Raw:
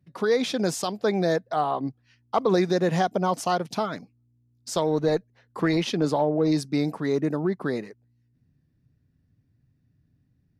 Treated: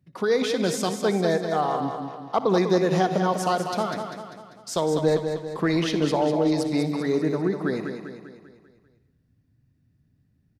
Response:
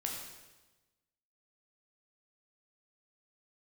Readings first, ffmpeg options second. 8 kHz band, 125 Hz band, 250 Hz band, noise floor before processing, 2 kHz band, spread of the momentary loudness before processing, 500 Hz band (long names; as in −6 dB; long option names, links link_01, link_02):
+1.0 dB, +1.0 dB, +1.0 dB, −68 dBFS, +1.5 dB, 8 LU, +1.5 dB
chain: -filter_complex "[0:a]aecho=1:1:197|394|591|788|985|1182:0.447|0.223|0.112|0.0558|0.0279|0.014,asplit=2[link_01][link_02];[1:a]atrim=start_sample=2205,adelay=60[link_03];[link_02][link_03]afir=irnorm=-1:irlink=0,volume=-14dB[link_04];[link_01][link_04]amix=inputs=2:normalize=0"